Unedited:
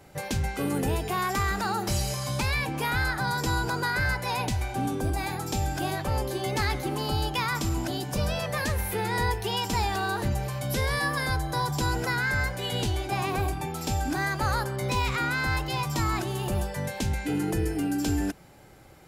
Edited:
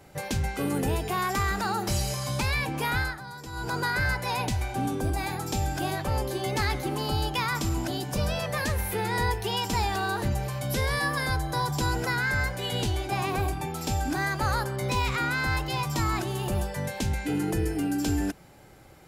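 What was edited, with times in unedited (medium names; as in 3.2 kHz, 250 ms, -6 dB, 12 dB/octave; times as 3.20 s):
2.97–3.76 s: dip -13 dB, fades 0.24 s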